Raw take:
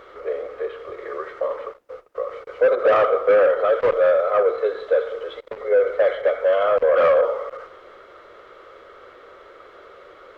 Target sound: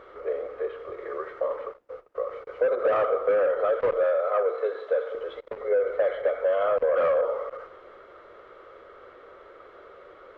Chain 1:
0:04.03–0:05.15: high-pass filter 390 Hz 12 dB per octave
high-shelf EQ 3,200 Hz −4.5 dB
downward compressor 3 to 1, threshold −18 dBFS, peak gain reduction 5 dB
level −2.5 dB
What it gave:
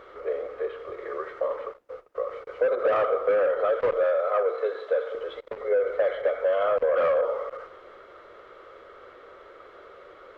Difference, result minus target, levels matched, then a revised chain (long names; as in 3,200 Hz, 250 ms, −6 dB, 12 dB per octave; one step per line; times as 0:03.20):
4,000 Hz band +3.0 dB
0:04.03–0:05.15: high-pass filter 390 Hz 12 dB per octave
high-shelf EQ 3,200 Hz −11 dB
downward compressor 3 to 1, threshold −18 dBFS, peak gain reduction 5 dB
level −2.5 dB